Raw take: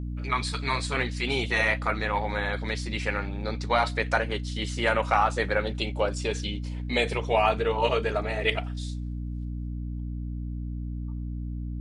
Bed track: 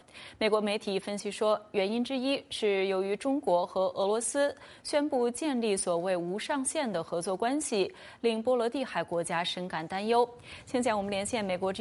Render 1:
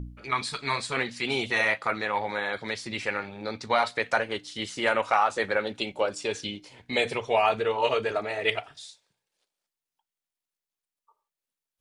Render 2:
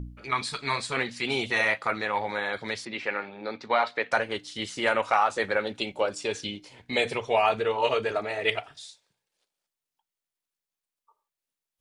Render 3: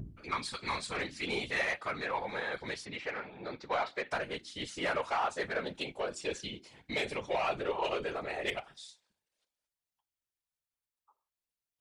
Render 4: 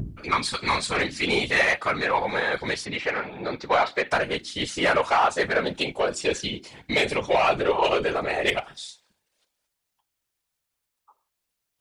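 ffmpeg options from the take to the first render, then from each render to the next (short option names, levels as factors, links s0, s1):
-af "bandreject=f=60:t=h:w=4,bandreject=f=120:t=h:w=4,bandreject=f=180:t=h:w=4,bandreject=f=240:t=h:w=4,bandreject=f=300:t=h:w=4"
-filter_complex "[0:a]asettb=1/sr,asplit=3[s0][s1][s2];[s0]atrim=end=2.854[s3];[s1]atrim=start=2.85:end=4.12,asetpts=PTS-STARTPTS,afade=t=in:d=0.004:c=qsin,afade=t=out:st=1.266:d=0.004:c=qsin,highpass=220,lowpass=3500[s4];[s2]atrim=start=4.116[s5];[s3][s4]acrossfade=d=0.004:c1=hsin:c2=qsin[s6];[s6][s5]acrossfade=d=0.004:c1=qsin:c2=hsin"
-af "asoftclip=type=tanh:threshold=0.126,afftfilt=real='hypot(re,im)*cos(2*PI*random(0))':imag='hypot(re,im)*sin(2*PI*random(1))':win_size=512:overlap=0.75"
-af "volume=3.76"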